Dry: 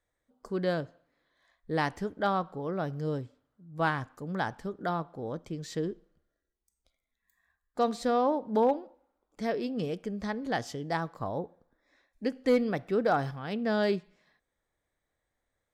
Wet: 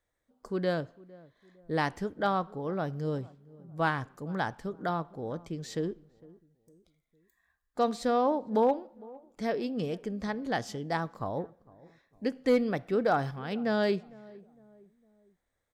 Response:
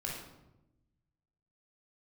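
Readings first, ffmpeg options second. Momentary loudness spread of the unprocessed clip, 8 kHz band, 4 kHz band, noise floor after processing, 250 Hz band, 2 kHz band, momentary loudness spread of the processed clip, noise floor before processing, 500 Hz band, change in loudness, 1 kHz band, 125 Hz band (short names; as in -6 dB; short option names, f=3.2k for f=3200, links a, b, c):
10 LU, 0.0 dB, 0.0 dB, -81 dBFS, 0.0 dB, 0.0 dB, 13 LU, -84 dBFS, 0.0 dB, 0.0 dB, 0.0 dB, 0.0 dB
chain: -filter_complex "[0:a]asplit=2[a][b];[b]adelay=456,lowpass=f=820:p=1,volume=-21dB,asplit=2[c][d];[d]adelay=456,lowpass=f=820:p=1,volume=0.45,asplit=2[e][f];[f]adelay=456,lowpass=f=820:p=1,volume=0.45[g];[a][c][e][g]amix=inputs=4:normalize=0"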